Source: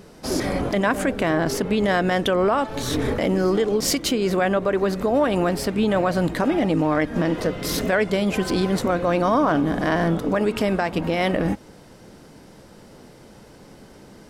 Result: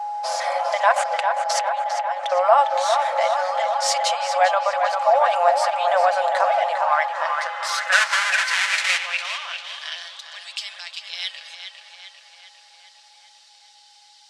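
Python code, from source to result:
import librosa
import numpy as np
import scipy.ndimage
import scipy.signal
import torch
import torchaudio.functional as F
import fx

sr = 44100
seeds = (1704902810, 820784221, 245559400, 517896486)

p1 = fx.halfwave_hold(x, sr, at=(7.91, 8.97), fade=0.02)
p2 = scipy.signal.sosfilt(scipy.signal.butter(4, 8700.0, 'lowpass', fs=sr, output='sos'), p1)
p3 = p2 + 0.47 * np.pad(p2, (int(5.9 * sr / 1000.0), 0))[:len(p2)]
p4 = fx.over_compress(p3, sr, threshold_db=-27.0, ratio=-0.5, at=(0.96, 2.32))
p5 = fx.brickwall_highpass(p4, sr, low_hz=510.0)
p6 = p5 + 10.0 ** (-33.0 / 20.0) * np.sin(2.0 * np.pi * 830.0 * np.arange(len(p5)) / sr)
p7 = p6 + fx.echo_tape(p6, sr, ms=401, feedback_pct=73, wet_db=-5.0, lp_hz=3500.0, drive_db=9.0, wow_cents=34, dry=0)
y = fx.filter_sweep_highpass(p7, sr, from_hz=730.0, to_hz=3800.0, start_s=6.57, end_s=10.13, q=2.5)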